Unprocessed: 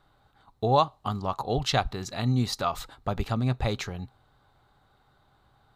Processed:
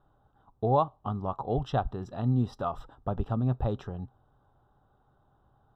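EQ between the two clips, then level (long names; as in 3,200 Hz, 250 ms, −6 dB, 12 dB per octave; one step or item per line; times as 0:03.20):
moving average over 20 samples
−1.0 dB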